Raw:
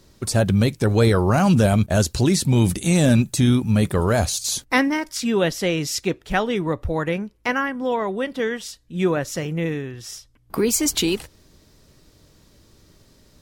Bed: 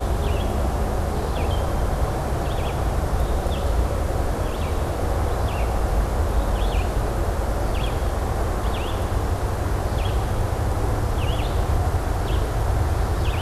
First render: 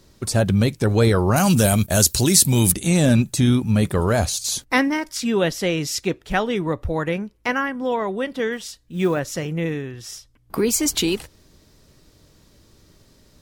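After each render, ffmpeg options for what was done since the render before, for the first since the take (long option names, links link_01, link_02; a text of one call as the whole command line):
ffmpeg -i in.wav -filter_complex "[0:a]asettb=1/sr,asplit=3[link_01][link_02][link_03];[link_01]atrim=end=1.364[link_04];[link_02]atrim=start=1.36:end=2.72,asetpts=PTS-STARTPTS,afade=type=in:duration=0.004:curve=qsin,afade=type=out:start_time=1.356:duration=0.004:curve=qsin,aemphasis=mode=production:type=75fm[link_05];[link_03]atrim=start=2.716[link_06];[link_04][link_05]acrossfade=duration=0.004:curve1=hsin:curve2=qsin[link_07];[link_07][link_06]acrossfade=duration=0.004:curve1=qsin:curve2=hsin,asettb=1/sr,asplit=3[link_08][link_09][link_10];[link_08]atrim=end=8.524[link_11];[link_09]atrim=start=8.52:end=9.2,asetpts=PTS-STARTPTS,afade=type=in:duration=0.004:curve=qsin,afade=type=out:start_time=0.676:duration=0.004:curve=qsin,acrusher=bits=8:mode=log:mix=0:aa=0.000001[link_12];[link_10]atrim=start=9.196[link_13];[link_11][link_12]acrossfade=duration=0.004:curve1=hsin:curve2=qsin[link_14];[link_14][link_13]acrossfade=duration=0.004:curve1=qsin:curve2=hsin" out.wav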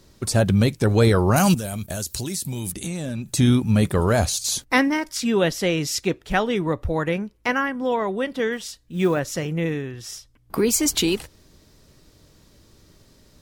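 ffmpeg -i in.wav -filter_complex "[0:a]asettb=1/sr,asplit=3[link_01][link_02][link_03];[link_01]atrim=end=1.544[link_04];[link_02]atrim=start=1.54:end=3.34,asetpts=PTS-STARTPTS,afade=type=in:duration=0.004:curve=qsin,afade=type=out:start_time=1.796:duration=0.004:curve=qsin,acompressor=threshold=-26dB:ratio=5:attack=3.2:release=140:knee=1:detection=peak[link_05];[link_03]atrim=start=3.336[link_06];[link_04][link_05]acrossfade=duration=0.004:curve1=hsin:curve2=qsin[link_07];[link_07][link_06]acrossfade=duration=0.004:curve1=qsin:curve2=hsin" out.wav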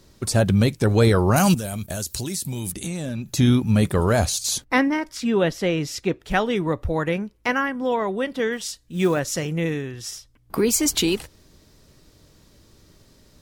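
ffmpeg -i in.wav -filter_complex "[0:a]asettb=1/sr,asplit=3[link_01][link_02][link_03];[link_01]atrim=end=3.094[link_04];[link_02]atrim=start=3.09:end=3.67,asetpts=PTS-STARTPTS,afade=type=in:duration=0.004:curve=qsin,afade=type=out:start_time=0.576:duration=0.004:curve=qsin,equalizer=frequency=8500:width=6.6:gain=-14[link_05];[link_03]atrim=start=3.666[link_06];[link_04][link_05]acrossfade=duration=0.004:curve1=hsin:curve2=qsin[link_07];[link_07][link_06]acrossfade=duration=0.004:curve1=qsin:curve2=hsin,asettb=1/sr,asplit=3[link_08][link_09][link_10];[link_08]atrim=end=4.584[link_11];[link_09]atrim=start=4.58:end=6.2,asetpts=PTS-STARTPTS,afade=type=in:duration=0.004:curve=qsin,afade=type=out:start_time=1.616:duration=0.004:curve=qsin,highshelf=frequency=3800:gain=-9[link_12];[link_10]atrim=start=6.196[link_13];[link_11][link_12]acrossfade=duration=0.004:curve1=hsin:curve2=qsin[link_14];[link_14][link_13]acrossfade=duration=0.004:curve1=qsin:curve2=hsin,asettb=1/sr,asplit=3[link_15][link_16][link_17];[link_15]atrim=end=8.614[link_18];[link_16]atrim=start=8.61:end=10.1,asetpts=PTS-STARTPTS,afade=type=in:duration=0.004:curve=qsin,afade=type=out:start_time=1.486:duration=0.004:curve=qsin,equalizer=frequency=7800:width=0.56:gain=5[link_19];[link_17]atrim=start=10.096[link_20];[link_18][link_19]acrossfade=duration=0.004:curve1=hsin:curve2=qsin[link_21];[link_21][link_20]acrossfade=duration=0.004:curve1=qsin:curve2=hsin" out.wav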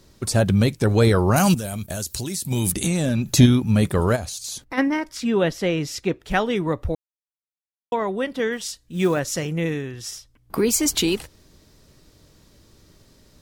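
ffmpeg -i in.wav -filter_complex "[0:a]asplit=3[link_01][link_02][link_03];[link_01]afade=type=out:start_time=2.5:duration=0.02[link_04];[link_02]acontrast=89,afade=type=in:start_time=2.5:duration=0.02,afade=type=out:start_time=3.45:duration=0.02[link_05];[link_03]afade=type=in:start_time=3.45:duration=0.02[link_06];[link_04][link_05][link_06]amix=inputs=3:normalize=0,asplit=3[link_07][link_08][link_09];[link_07]afade=type=out:start_time=4.15:duration=0.02[link_10];[link_08]acompressor=threshold=-32dB:ratio=2.5:attack=3.2:release=140:knee=1:detection=peak,afade=type=in:start_time=4.15:duration=0.02,afade=type=out:start_time=4.77:duration=0.02[link_11];[link_09]afade=type=in:start_time=4.77:duration=0.02[link_12];[link_10][link_11][link_12]amix=inputs=3:normalize=0,asplit=3[link_13][link_14][link_15];[link_13]atrim=end=6.95,asetpts=PTS-STARTPTS,afade=type=out:start_time=6.946:duration=0.004:curve=hsin[link_16];[link_14]atrim=start=6.95:end=7.92,asetpts=PTS-STARTPTS,volume=0[link_17];[link_15]atrim=start=7.92,asetpts=PTS-STARTPTS,afade=type=in:duration=0.004:curve=hsin[link_18];[link_16][link_17][link_18]concat=n=3:v=0:a=1" out.wav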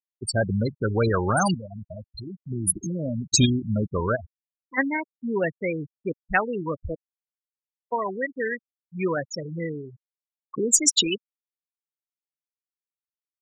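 ffmpeg -i in.wav -af "afftfilt=real='re*gte(hypot(re,im),0.178)':imag='im*gte(hypot(re,im),0.178)':win_size=1024:overlap=0.75,tiltshelf=frequency=970:gain=-7.5" out.wav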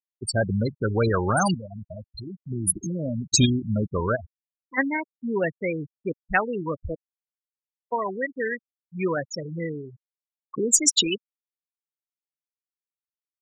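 ffmpeg -i in.wav -af anull out.wav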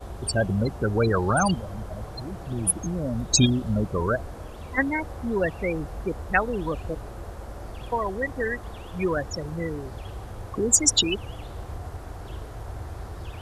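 ffmpeg -i in.wav -i bed.wav -filter_complex "[1:a]volume=-14.5dB[link_01];[0:a][link_01]amix=inputs=2:normalize=0" out.wav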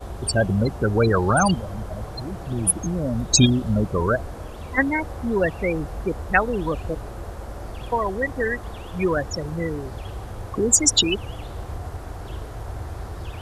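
ffmpeg -i in.wav -af "volume=3.5dB,alimiter=limit=-3dB:level=0:latency=1" out.wav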